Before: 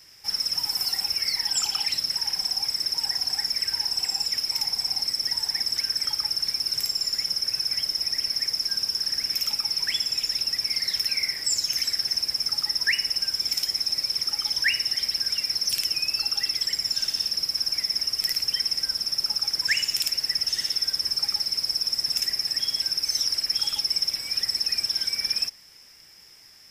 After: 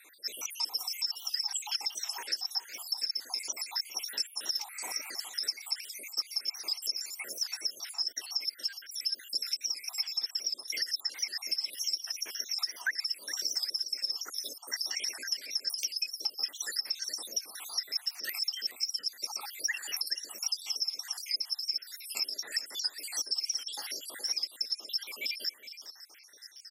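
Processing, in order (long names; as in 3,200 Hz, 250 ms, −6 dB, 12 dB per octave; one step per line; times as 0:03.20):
time-frequency cells dropped at random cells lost 77%
high-pass filter 310 Hz 24 dB per octave
healed spectral selection 0:04.72–0:05.05, 1,200–4,300 Hz after
downward compressor 6 to 1, threshold −35 dBFS, peak gain reduction 15 dB
on a send: single-tap delay 416 ms −13.5 dB
on the sum: wow of a warped record 78 rpm, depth 100 cents
level +5 dB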